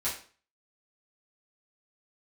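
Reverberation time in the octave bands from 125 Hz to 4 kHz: 0.45, 0.45, 0.40, 0.40, 0.40, 0.35 s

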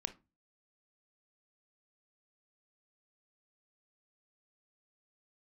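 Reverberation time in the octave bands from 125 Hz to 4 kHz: 0.45, 0.40, 0.30, 0.25, 0.20, 0.15 s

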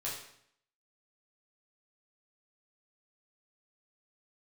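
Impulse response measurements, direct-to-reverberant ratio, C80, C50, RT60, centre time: -6.5 dB, 7.0 dB, 3.5 dB, 0.65 s, 44 ms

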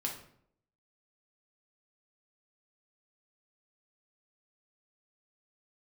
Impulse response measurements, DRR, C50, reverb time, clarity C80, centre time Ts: -1.0 dB, 6.5 dB, 0.65 s, 11.0 dB, 24 ms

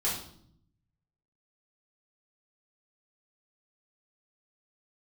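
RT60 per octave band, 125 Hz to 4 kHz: 1.4, 1.0, 0.70, 0.60, 0.50, 0.55 s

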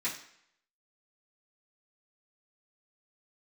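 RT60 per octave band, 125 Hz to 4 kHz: 0.55, 0.60, 0.65, 0.70, 0.70, 0.65 s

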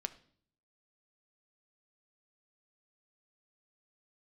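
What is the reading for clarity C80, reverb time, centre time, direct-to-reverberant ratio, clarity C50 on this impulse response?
20.0 dB, 0.55 s, 4 ms, 9.5 dB, 16.5 dB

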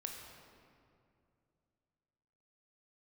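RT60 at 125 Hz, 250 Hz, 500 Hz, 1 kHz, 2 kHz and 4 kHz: 3.2, 3.0, 2.7, 2.3, 1.9, 1.4 s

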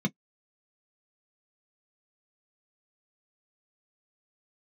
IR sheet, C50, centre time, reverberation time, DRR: 39.5 dB, 6 ms, not exponential, 3.0 dB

